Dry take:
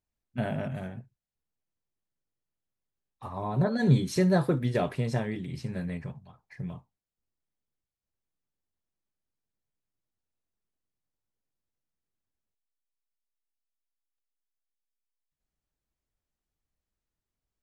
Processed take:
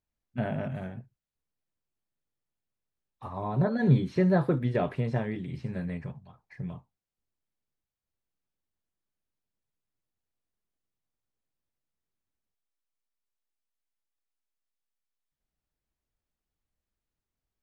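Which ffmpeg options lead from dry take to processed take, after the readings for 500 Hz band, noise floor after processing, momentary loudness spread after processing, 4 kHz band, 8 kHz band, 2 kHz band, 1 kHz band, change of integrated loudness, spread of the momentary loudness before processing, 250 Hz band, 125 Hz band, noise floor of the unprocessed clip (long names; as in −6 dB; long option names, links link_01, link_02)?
0.0 dB, below −85 dBFS, 17 LU, −7.5 dB, below −15 dB, −1.0 dB, 0.0 dB, −0.5 dB, 17 LU, 0.0 dB, 0.0 dB, below −85 dBFS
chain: -filter_complex "[0:a]acrossover=split=3400[link_01][link_02];[link_02]acompressor=threshold=-60dB:ratio=4:attack=1:release=60[link_03];[link_01][link_03]amix=inputs=2:normalize=0,highshelf=frequency=5600:gain=-7.5"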